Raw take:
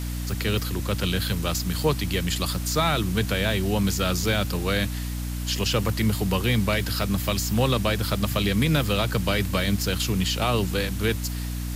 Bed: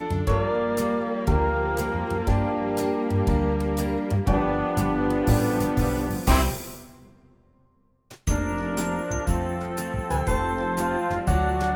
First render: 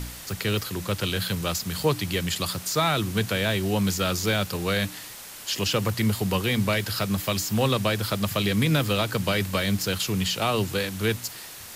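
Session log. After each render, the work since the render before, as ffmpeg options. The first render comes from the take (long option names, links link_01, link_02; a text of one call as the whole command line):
ffmpeg -i in.wav -af "bandreject=frequency=60:width_type=h:width=4,bandreject=frequency=120:width_type=h:width=4,bandreject=frequency=180:width_type=h:width=4,bandreject=frequency=240:width_type=h:width=4,bandreject=frequency=300:width_type=h:width=4" out.wav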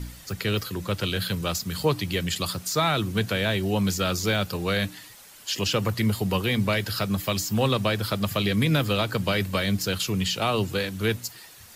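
ffmpeg -i in.wav -af "afftdn=noise_reduction=9:noise_floor=-41" out.wav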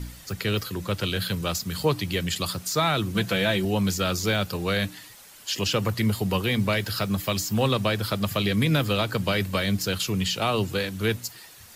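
ffmpeg -i in.wav -filter_complex "[0:a]asettb=1/sr,asplit=3[link_01][link_02][link_03];[link_01]atrim=end=3.144[link_04];[link_02]atrim=start=3.14:end=3.65,asetpts=PTS-STARTPTS,afade=type=in:duration=0.004:curve=qsin,afade=type=out:start_time=0.506:duration=0.004:curve=qsin,aecho=1:1:5.9:0.65,atrim=end_sample=22491[link_05];[link_03]atrim=start=3.646[link_06];[link_04][link_05]acrossfade=duration=0.004:curve1=hsin:curve2=qsin[link_07];[link_07][link_06]acrossfade=duration=0.004:curve1=qsin:curve2=hsin,asettb=1/sr,asplit=3[link_08][link_09][link_10];[link_08]atrim=end=6.544[link_11];[link_09]atrim=start=6.54:end=7.63,asetpts=PTS-STARTPTS,afade=type=in:duration=0.004:curve=qsin,afade=type=out:start_time=1.086:duration=0.004:curve=qsin,aeval=exprs='val(0)*gte(abs(val(0)),0.00422)':channel_layout=same[link_12];[link_10]atrim=start=7.626[link_13];[link_11][link_12]acrossfade=duration=0.004:curve1=hsin:curve2=qsin[link_14];[link_14][link_13]acrossfade=duration=0.004:curve1=qsin:curve2=hsin" out.wav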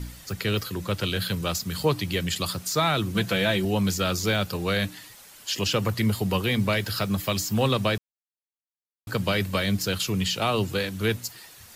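ffmpeg -i in.wav -filter_complex "[0:a]asplit=3[link_01][link_02][link_03];[link_01]atrim=end=7.98,asetpts=PTS-STARTPTS,afade=type=out:start_time=7.976:duration=0.004:curve=hsin[link_04];[link_02]atrim=start=7.98:end=9.07,asetpts=PTS-STARTPTS,volume=0[link_05];[link_03]atrim=start=9.07,asetpts=PTS-STARTPTS,afade=type=in:duration=0.004:curve=hsin[link_06];[link_04][link_05][link_06]concat=n=3:v=0:a=1" out.wav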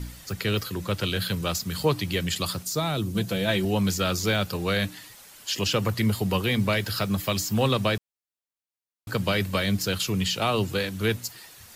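ffmpeg -i in.wav -filter_complex "[0:a]asplit=3[link_01][link_02][link_03];[link_01]afade=type=out:start_time=2.62:duration=0.02[link_04];[link_02]equalizer=frequency=1700:width_type=o:width=2.3:gain=-9,afade=type=in:start_time=2.62:duration=0.02,afade=type=out:start_time=3.47:duration=0.02[link_05];[link_03]afade=type=in:start_time=3.47:duration=0.02[link_06];[link_04][link_05][link_06]amix=inputs=3:normalize=0" out.wav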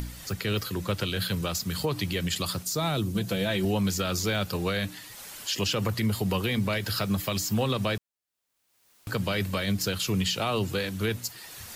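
ffmpeg -i in.wav -af "acompressor=mode=upward:threshold=-34dB:ratio=2.5,alimiter=limit=-18dB:level=0:latency=1:release=71" out.wav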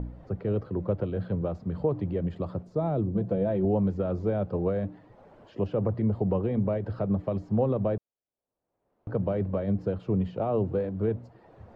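ffmpeg -i in.wav -af "lowpass=frequency=610:width_type=q:width=1.5" out.wav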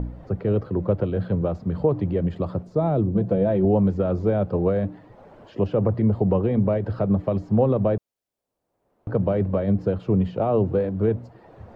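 ffmpeg -i in.wav -af "volume=6dB" out.wav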